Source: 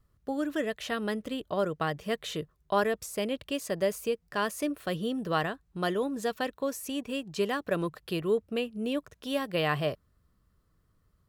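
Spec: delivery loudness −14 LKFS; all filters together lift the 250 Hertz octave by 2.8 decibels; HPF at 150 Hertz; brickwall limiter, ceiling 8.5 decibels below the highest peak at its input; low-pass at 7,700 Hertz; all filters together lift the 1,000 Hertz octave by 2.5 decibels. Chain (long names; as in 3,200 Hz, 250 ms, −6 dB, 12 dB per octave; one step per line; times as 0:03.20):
high-pass filter 150 Hz
low-pass filter 7,700 Hz
parametric band 250 Hz +4 dB
parametric band 1,000 Hz +3 dB
level +17.5 dB
brickwall limiter −1.5 dBFS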